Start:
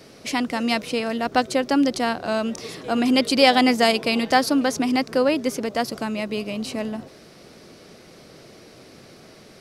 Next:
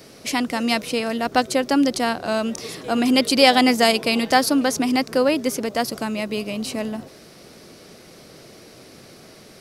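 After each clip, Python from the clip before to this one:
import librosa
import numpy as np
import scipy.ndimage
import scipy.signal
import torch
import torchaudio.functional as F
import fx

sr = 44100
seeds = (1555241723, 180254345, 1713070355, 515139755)

y = fx.high_shelf(x, sr, hz=8400.0, db=8.5)
y = y * librosa.db_to_amplitude(1.0)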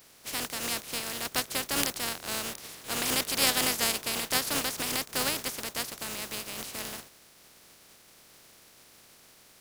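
y = fx.spec_flatten(x, sr, power=0.27)
y = y * librosa.db_to_amplitude(-11.0)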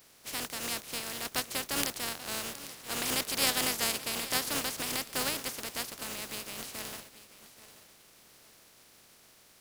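y = fx.echo_feedback(x, sr, ms=833, feedback_pct=30, wet_db=-16.0)
y = y * librosa.db_to_amplitude(-3.0)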